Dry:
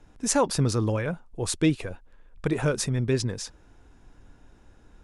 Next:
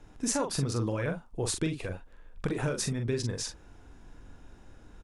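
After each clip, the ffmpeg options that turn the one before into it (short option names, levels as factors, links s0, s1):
-filter_complex "[0:a]acompressor=threshold=0.0355:ratio=5,asplit=2[s0][s1];[s1]adelay=43,volume=0.501[s2];[s0][s2]amix=inputs=2:normalize=0,volume=1.12"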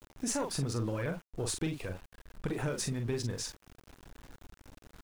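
-af "aeval=exprs='(tanh(12.6*val(0)+0.25)-tanh(0.25))/12.6':c=same,aeval=exprs='val(0)*gte(abs(val(0)),0.00447)':c=same,volume=0.794"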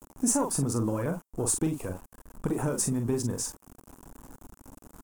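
-af "equalizer=f=250:t=o:w=1:g=7,equalizer=f=1000:t=o:w=1:g=7,equalizer=f=2000:t=o:w=1:g=-7,equalizer=f=4000:t=o:w=1:g=-11,equalizer=f=8000:t=o:w=1:g=7,equalizer=f=16000:t=o:w=1:g=10,volume=1.26"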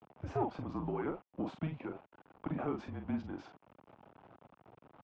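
-af "highpass=f=360:t=q:w=0.5412,highpass=f=360:t=q:w=1.307,lowpass=f=3400:t=q:w=0.5176,lowpass=f=3400:t=q:w=0.7071,lowpass=f=3400:t=q:w=1.932,afreqshift=-160,volume=0.708"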